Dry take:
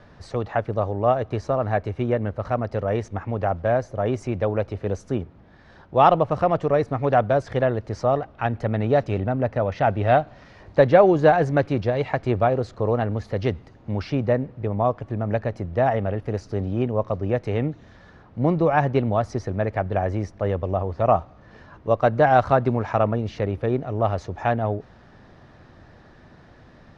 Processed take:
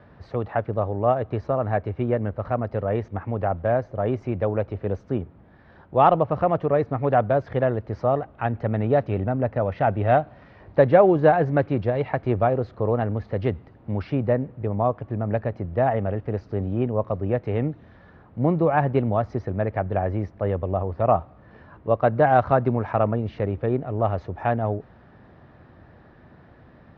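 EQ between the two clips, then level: high-pass 45 Hz; distance through air 250 m; treble shelf 4.4 kHz -4.5 dB; 0.0 dB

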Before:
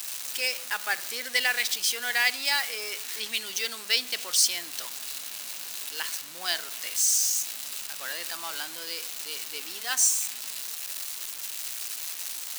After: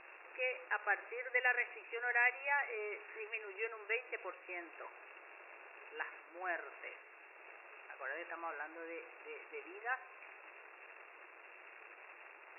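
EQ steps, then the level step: brick-wall FIR band-pass 320–2800 Hz; distance through air 280 m; bass shelf 460 Hz +9 dB; -5.0 dB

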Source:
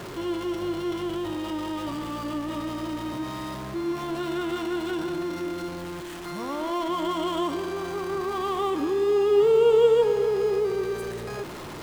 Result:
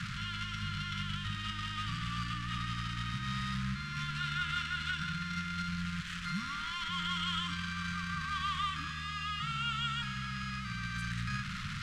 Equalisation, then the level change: Chebyshev band-stop 200–1300 Hz, order 4; distance through air 90 m; +4.0 dB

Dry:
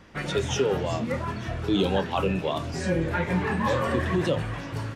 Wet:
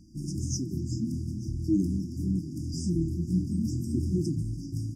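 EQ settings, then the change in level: brick-wall FIR band-stop 360–4700 Hz; 0.0 dB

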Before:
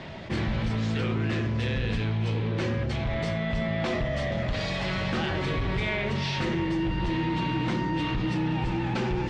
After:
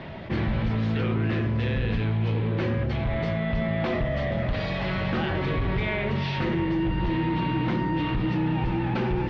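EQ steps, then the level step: distance through air 230 m; +2.5 dB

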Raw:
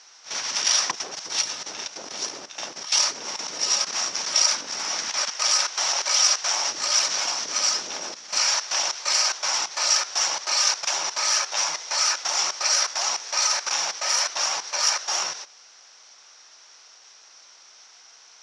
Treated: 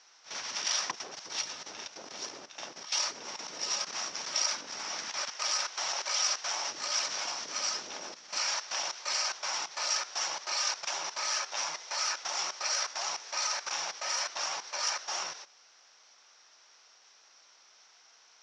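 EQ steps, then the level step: distance through air 65 m; -7.0 dB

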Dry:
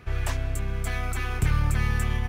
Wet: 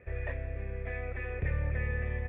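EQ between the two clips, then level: cascade formant filter e; peaking EQ 73 Hz +7.5 dB 0.78 oct; +7.0 dB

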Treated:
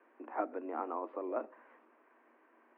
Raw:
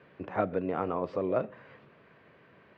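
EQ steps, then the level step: rippled Chebyshev high-pass 230 Hz, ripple 9 dB; low-pass 2.6 kHz 24 dB/octave; distance through air 71 m; -1.5 dB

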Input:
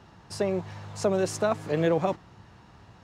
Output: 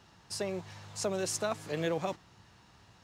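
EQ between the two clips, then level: treble shelf 2.3 kHz +12 dB; -9.0 dB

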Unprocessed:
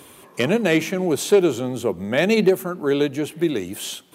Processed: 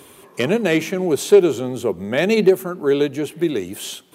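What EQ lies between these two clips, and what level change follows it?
peaking EQ 400 Hz +5 dB 0.22 oct; 0.0 dB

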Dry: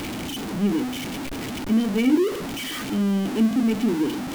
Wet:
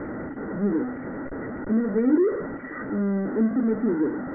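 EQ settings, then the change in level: rippled Chebyshev low-pass 2 kHz, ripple 9 dB; band-stop 710 Hz, Q 12; +4.5 dB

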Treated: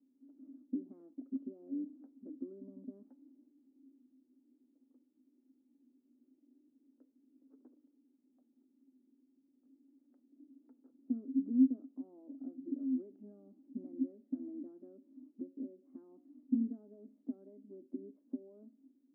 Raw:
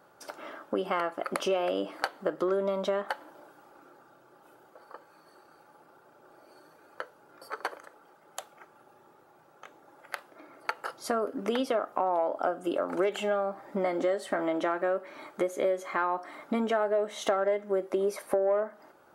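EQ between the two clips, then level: Butterworth band-pass 260 Hz, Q 7.2; +7.5 dB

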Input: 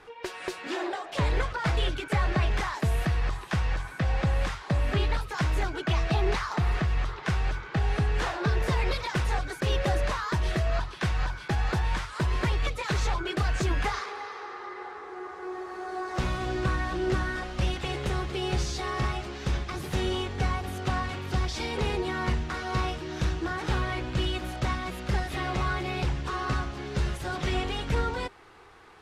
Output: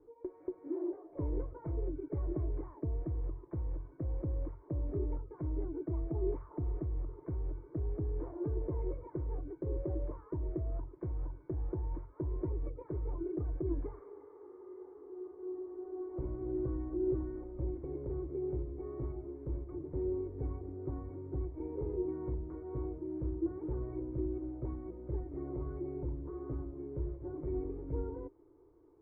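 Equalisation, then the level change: cascade formant filter u; distance through air 200 m; static phaser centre 810 Hz, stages 6; +6.5 dB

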